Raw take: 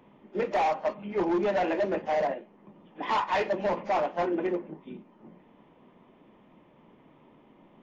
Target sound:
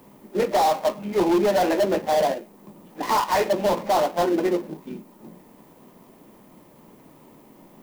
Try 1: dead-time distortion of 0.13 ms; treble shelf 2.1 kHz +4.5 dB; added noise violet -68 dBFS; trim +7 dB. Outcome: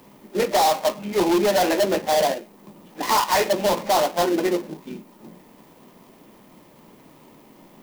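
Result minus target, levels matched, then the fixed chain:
4 kHz band +5.0 dB
dead-time distortion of 0.13 ms; treble shelf 2.1 kHz -3.5 dB; added noise violet -68 dBFS; trim +7 dB

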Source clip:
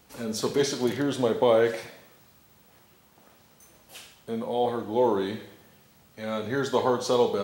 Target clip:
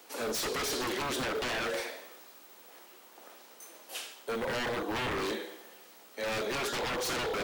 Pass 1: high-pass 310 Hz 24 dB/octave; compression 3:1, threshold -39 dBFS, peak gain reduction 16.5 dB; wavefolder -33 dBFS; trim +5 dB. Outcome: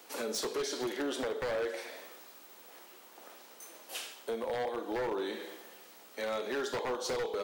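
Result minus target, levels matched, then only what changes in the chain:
compression: peak gain reduction +8 dB
change: compression 3:1, threshold -27 dBFS, peak gain reduction 8.5 dB

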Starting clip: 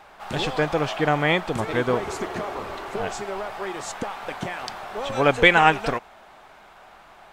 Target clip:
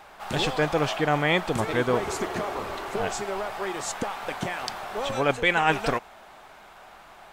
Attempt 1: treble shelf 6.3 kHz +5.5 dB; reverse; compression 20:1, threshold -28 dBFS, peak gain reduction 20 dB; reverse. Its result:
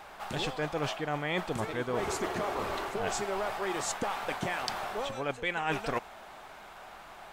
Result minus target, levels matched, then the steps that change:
compression: peak gain reduction +10.5 dB
change: compression 20:1, threshold -17 dBFS, peak gain reduction 9.5 dB

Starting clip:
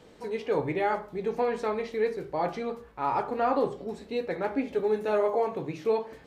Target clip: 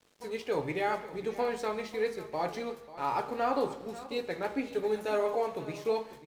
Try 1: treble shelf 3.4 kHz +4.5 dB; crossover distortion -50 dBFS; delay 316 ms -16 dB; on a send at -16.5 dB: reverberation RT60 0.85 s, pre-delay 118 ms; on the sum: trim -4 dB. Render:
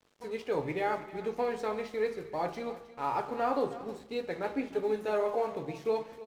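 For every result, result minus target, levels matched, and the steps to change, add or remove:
echo 225 ms early; 8 kHz band -4.5 dB
change: delay 541 ms -16 dB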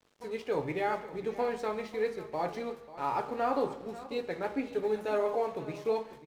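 8 kHz band -4.5 dB
change: treble shelf 3.4 kHz +12 dB

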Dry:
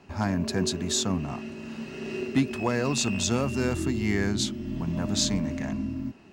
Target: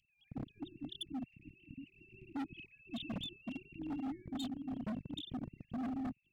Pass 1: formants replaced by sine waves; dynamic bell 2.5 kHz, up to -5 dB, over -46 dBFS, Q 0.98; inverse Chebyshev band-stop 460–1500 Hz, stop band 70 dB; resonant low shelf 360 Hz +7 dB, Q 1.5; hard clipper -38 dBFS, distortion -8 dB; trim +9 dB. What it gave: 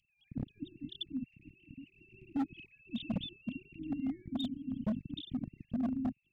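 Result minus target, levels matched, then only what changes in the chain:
hard clipper: distortion -5 dB
change: hard clipper -46 dBFS, distortion -3 dB

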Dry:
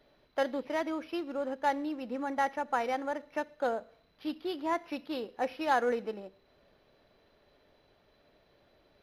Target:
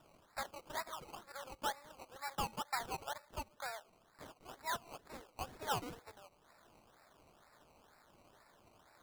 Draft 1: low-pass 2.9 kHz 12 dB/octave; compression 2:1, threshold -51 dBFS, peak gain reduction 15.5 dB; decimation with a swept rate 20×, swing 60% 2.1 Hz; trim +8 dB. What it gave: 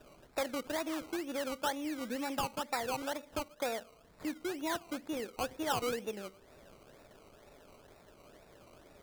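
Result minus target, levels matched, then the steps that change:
1 kHz band -3.0 dB
add after compression: high-pass 860 Hz 24 dB/octave

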